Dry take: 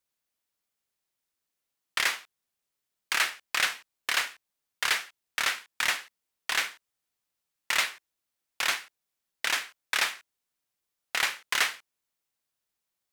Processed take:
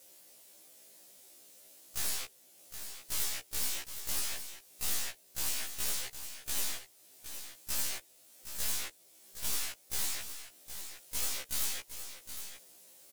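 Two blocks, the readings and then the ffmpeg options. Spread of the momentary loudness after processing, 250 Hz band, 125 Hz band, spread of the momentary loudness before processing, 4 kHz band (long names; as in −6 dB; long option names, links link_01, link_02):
21 LU, −0.5 dB, can't be measured, 9 LU, −8.5 dB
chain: -filter_complex "[0:a]lowshelf=frequency=770:width_type=q:width=1.5:gain=14,bandreject=frequency=460:width=12,acrossover=split=4200[link_01][link_02];[link_02]acompressor=threshold=-41dB:ratio=4:attack=1:release=60[link_03];[link_01][link_03]amix=inputs=2:normalize=0,equalizer=frequency=10000:width_type=o:width=1.5:gain=5.5,asplit=2[link_04][link_05];[link_05]acompressor=threshold=-58dB:ratio=6,volume=1.5dB[link_06];[link_04][link_06]amix=inputs=2:normalize=0,asplit=2[link_07][link_08];[link_08]highpass=frequency=720:poles=1,volume=20dB,asoftclip=type=tanh:threshold=-27.5dB[link_09];[link_07][link_09]amix=inputs=2:normalize=0,lowpass=frequency=1900:poles=1,volume=-6dB,aeval=exprs='0.0112*(abs(mod(val(0)/0.0112+3,4)-2)-1)':channel_layout=same,crystalizer=i=6:c=0,aeval=exprs='clip(val(0),-1,0.00501)':channel_layout=same,aecho=1:1:765:0.316,afftfilt=real='re*1.73*eq(mod(b,3),0)':imag='im*1.73*eq(mod(b,3),0)':win_size=2048:overlap=0.75"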